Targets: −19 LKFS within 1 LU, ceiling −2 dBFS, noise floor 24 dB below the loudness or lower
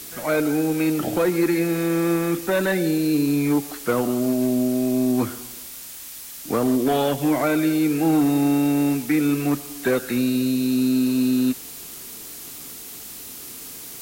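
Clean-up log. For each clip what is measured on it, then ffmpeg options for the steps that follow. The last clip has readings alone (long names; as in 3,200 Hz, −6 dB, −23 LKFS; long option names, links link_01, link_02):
background noise floor −38 dBFS; target noise floor −46 dBFS; integrated loudness −21.5 LKFS; sample peak −10.5 dBFS; target loudness −19.0 LKFS
→ -af "afftdn=noise_reduction=8:noise_floor=-38"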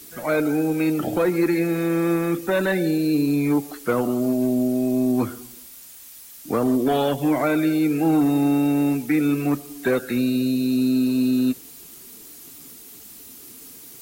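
background noise floor −43 dBFS; target noise floor −46 dBFS
→ -af "afftdn=noise_reduction=6:noise_floor=-43"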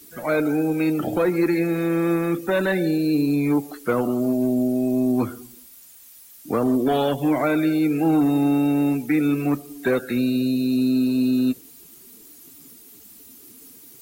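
background noise floor −47 dBFS; integrated loudness −21.5 LKFS; sample peak −11.0 dBFS; target loudness −19.0 LKFS
→ -af "volume=2.5dB"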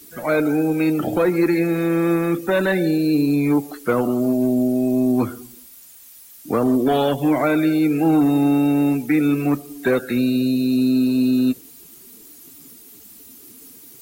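integrated loudness −19.0 LKFS; sample peak −8.5 dBFS; background noise floor −45 dBFS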